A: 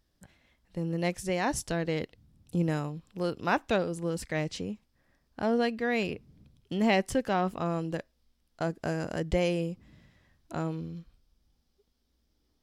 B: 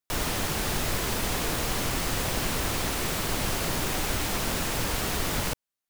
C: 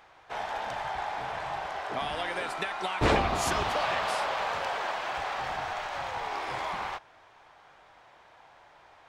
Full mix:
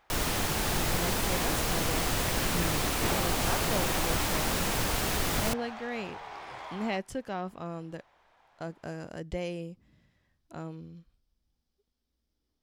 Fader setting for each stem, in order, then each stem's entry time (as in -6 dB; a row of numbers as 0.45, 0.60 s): -7.5, -1.0, -9.0 dB; 0.00, 0.00, 0.00 s